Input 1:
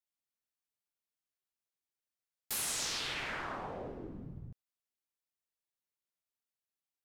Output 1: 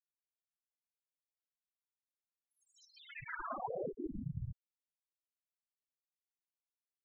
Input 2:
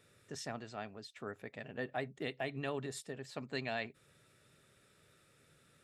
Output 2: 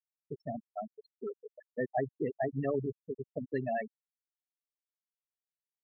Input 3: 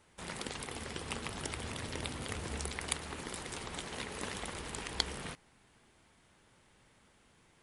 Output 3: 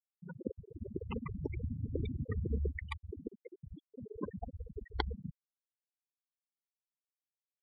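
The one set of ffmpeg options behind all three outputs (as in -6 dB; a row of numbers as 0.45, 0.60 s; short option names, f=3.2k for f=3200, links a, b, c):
-af "afftfilt=real='re*gte(hypot(re,im),0.0398)':imag='im*gte(hypot(re,im),0.0398)':win_size=1024:overlap=0.75,lowpass=1.4k,volume=8.5dB"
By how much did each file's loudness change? -6.0, +5.0, -1.5 LU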